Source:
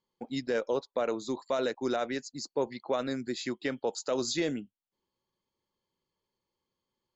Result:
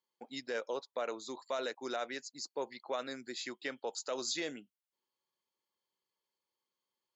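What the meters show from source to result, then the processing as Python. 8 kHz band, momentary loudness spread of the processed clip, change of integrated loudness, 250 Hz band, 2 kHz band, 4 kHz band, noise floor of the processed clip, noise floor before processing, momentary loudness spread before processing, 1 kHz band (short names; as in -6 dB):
n/a, 6 LU, -7.0 dB, -12.0 dB, -3.0 dB, -2.5 dB, under -85 dBFS, under -85 dBFS, 6 LU, -5.0 dB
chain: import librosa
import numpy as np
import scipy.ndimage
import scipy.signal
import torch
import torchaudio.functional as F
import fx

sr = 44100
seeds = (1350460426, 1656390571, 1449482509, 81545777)

y = fx.highpass(x, sr, hz=790.0, slope=6)
y = y * librosa.db_to_amplitude(-2.5)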